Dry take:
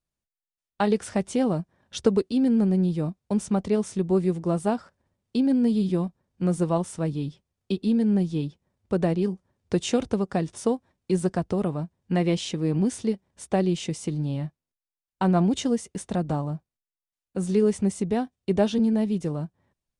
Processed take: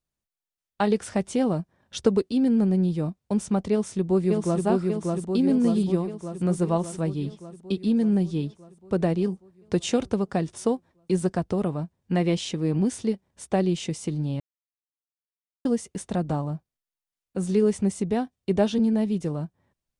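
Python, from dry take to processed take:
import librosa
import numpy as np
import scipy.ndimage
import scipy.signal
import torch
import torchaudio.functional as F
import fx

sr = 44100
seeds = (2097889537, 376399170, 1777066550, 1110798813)

y = fx.echo_throw(x, sr, start_s=3.71, length_s=0.94, ms=590, feedback_pct=65, wet_db=-2.5)
y = fx.edit(y, sr, fx.silence(start_s=14.4, length_s=1.25), tone=tone)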